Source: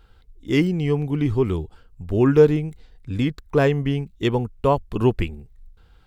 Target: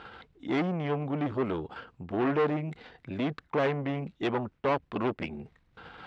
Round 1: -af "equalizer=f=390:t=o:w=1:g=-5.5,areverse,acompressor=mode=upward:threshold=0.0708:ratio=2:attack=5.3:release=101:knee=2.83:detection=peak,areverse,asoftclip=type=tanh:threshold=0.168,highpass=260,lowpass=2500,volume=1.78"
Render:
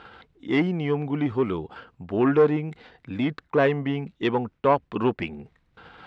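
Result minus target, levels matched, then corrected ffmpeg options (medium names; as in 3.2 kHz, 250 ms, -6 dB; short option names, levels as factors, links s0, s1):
saturation: distortion -8 dB
-af "equalizer=f=390:t=o:w=1:g=-5.5,areverse,acompressor=mode=upward:threshold=0.0708:ratio=2:attack=5.3:release=101:knee=2.83:detection=peak,areverse,asoftclip=type=tanh:threshold=0.0473,highpass=260,lowpass=2500,volume=1.78"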